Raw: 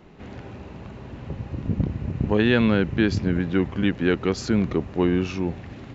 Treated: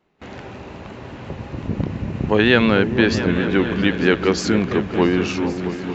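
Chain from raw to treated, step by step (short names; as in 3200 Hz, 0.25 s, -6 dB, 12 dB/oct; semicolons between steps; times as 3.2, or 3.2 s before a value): vibrato 5.7 Hz 38 cents; on a send: repeats that get brighter 0.224 s, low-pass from 200 Hz, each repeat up 2 oct, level -6 dB; on the sum: gate with hold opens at -32 dBFS; low shelf 270 Hz -10.5 dB; gain +8 dB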